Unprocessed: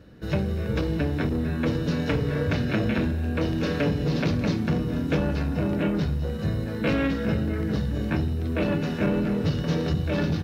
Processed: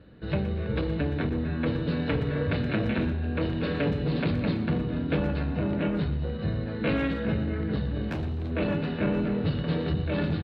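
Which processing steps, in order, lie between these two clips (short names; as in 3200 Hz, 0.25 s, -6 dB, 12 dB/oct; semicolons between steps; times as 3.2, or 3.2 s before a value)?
steep low-pass 4400 Hz 72 dB/oct; 8.09–8.51 hard clip -25 dBFS, distortion -23 dB; speakerphone echo 0.12 s, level -12 dB; gain -2.5 dB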